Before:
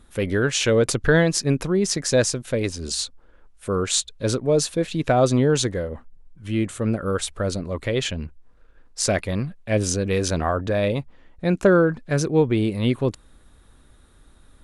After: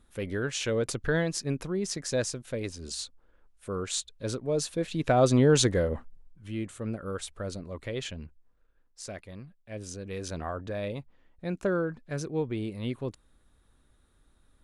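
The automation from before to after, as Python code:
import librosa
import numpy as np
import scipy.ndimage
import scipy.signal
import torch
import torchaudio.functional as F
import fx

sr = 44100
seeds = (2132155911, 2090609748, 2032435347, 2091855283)

y = fx.gain(x, sr, db=fx.line((4.44, -10.0), (5.91, 1.5), (6.54, -11.0), (8.23, -11.0), (9.02, -19.0), (9.7, -19.0), (10.41, -12.0)))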